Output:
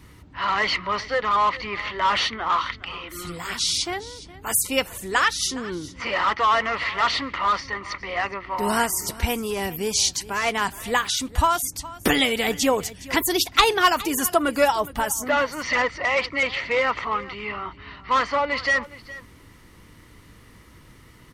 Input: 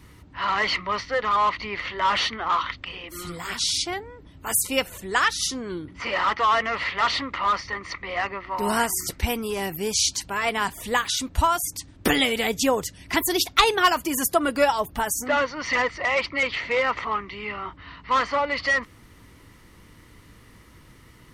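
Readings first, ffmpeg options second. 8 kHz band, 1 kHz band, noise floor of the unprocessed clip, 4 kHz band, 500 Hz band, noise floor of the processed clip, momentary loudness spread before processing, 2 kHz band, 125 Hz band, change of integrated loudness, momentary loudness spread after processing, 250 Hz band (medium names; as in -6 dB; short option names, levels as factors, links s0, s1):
+1.0 dB, +1.0 dB, -51 dBFS, +1.0 dB, +1.0 dB, -50 dBFS, 11 LU, +1.0 dB, +1.0 dB, +1.0 dB, 11 LU, +1.0 dB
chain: -af "aecho=1:1:414:0.126,volume=1.12"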